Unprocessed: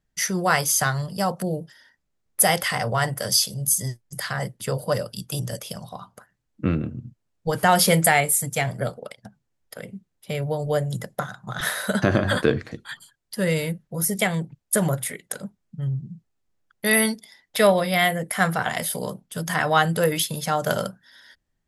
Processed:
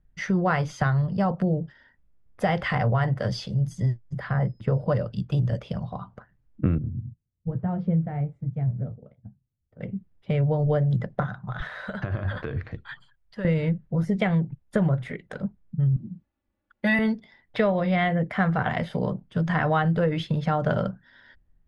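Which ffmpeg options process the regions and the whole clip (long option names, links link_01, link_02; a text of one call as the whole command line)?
ffmpeg -i in.wav -filter_complex "[0:a]asettb=1/sr,asplit=3[link_01][link_02][link_03];[link_01]atrim=end=4.194[link_04];[link_02]atrim=start=4.19:end=4.86,asetpts=PTS-STARTPTS,afade=type=in:duration=0.004:curve=qsin,afade=type=out:start_time=0.666:duration=0.004:curve=qsin,equalizer=frequency=5800:width_type=o:width=2.8:gain=-9.5,aeval=exprs='val(0)+0.002*sin(2*PI*5100*n/s)':channel_layout=same[link_05];[link_03]atrim=start=4.856[link_06];[link_04][link_05]acrossfade=duration=0.004:curve1=hsin:curve2=qsin[link_07];[link_07][link_06]acrossfade=duration=0.004:curve1=qsin:curve2=hsin,asettb=1/sr,asplit=3[link_08][link_09][link_10];[link_08]atrim=end=6.784[link_11];[link_09]atrim=start=6.78:end=9.81,asetpts=PTS-STARTPTS,afade=type=in:duration=0.004:curve=qsin,afade=type=out:start_time=3.026:duration=0.004:curve=qsin,bandpass=frequency=100:width_type=q:width=0.78,flanger=delay=6.5:depth=9.8:regen=-51:speed=1.1:shape=triangular[link_12];[link_10]atrim=start=9.806[link_13];[link_11][link_12]acrossfade=duration=0.004:curve1=hsin:curve2=qsin[link_14];[link_14][link_13]acrossfade=duration=0.004:curve1=qsin:curve2=hsin,asettb=1/sr,asplit=3[link_15][link_16][link_17];[link_15]atrim=end=11.464[link_18];[link_16]atrim=start=11.46:end=13.45,asetpts=PTS-STARTPTS,afade=type=in:duration=0.004:curve=qsin,afade=type=out:start_time=1.986:duration=0.004:curve=qsin,equalizer=frequency=250:width=0.68:gain=-11,acompressor=threshold=-30dB:ratio=6:attack=3.2:release=140:knee=1:detection=peak[link_19];[link_17]atrim=start=13.446[link_20];[link_18][link_19]acrossfade=duration=0.004:curve1=hsin:curve2=qsin[link_21];[link_21][link_20]acrossfade=duration=0.004:curve1=qsin:curve2=hsin,asettb=1/sr,asplit=3[link_22][link_23][link_24];[link_22]atrim=end=15.964[link_25];[link_23]atrim=start=15.96:end=16.99,asetpts=PTS-STARTPTS,afade=type=in:duration=0.004:curve=qsin,afade=type=out:start_time=1.026:duration=0.004:curve=qsin,highpass=frequency=170:poles=1,highshelf=frequency=6500:gain=6.5,aecho=1:1:3.5:0.99,atrim=end_sample=45423[link_26];[link_24]atrim=start=16.986[link_27];[link_25][link_26]acrossfade=duration=0.004:curve1=hsin:curve2=qsin[link_28];[link_28][link_27]acrossfade=duration=0.004:curve1=qsin:curve2=hsin,lowpass=2800,aemphasis=mode=reproduction:type=bsi,acompressor=threshold=-19dB:ratio=5" out.wav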